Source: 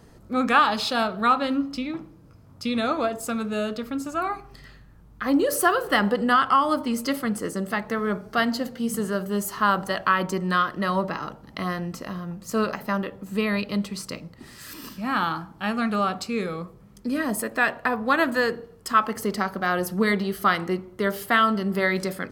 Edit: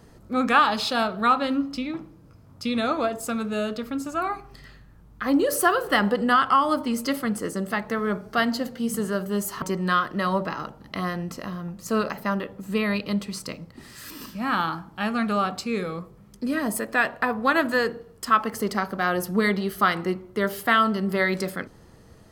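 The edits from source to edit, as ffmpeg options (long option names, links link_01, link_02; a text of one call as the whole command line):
ffmpeg -i in.wav -filter_complex "[0:a]asplit=2[link_01][link_02];[link_01]atrim=end=9.622[link_03];[link_02]atrim=start=10.248[link_04];[link_03][link_04]acrossfade=duration=0.004:curve1=hsin:curve2=hsin" out.wav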